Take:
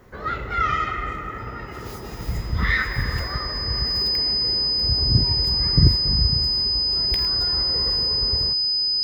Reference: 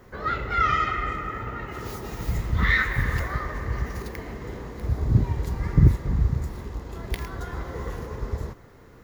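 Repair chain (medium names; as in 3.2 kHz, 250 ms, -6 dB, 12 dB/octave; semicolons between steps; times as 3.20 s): band-stop 5 kHz, Q 30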